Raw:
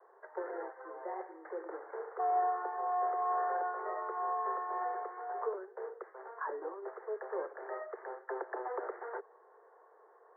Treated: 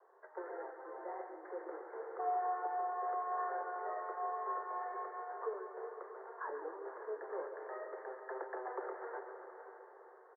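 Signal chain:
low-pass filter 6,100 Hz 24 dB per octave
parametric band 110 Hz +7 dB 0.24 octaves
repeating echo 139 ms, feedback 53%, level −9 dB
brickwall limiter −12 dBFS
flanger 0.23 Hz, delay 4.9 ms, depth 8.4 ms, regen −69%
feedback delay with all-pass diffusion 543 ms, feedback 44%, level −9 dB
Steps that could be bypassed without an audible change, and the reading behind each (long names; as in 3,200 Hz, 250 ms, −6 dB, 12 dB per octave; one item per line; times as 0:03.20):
low-pass filter 6,100 Hz: nothing at its input above 1,900 Hz
parametric band 110 Hz: nothing at its input below 300 Hz
brickwall limiter −12 dBFS: peak of its input −23.5 dBFS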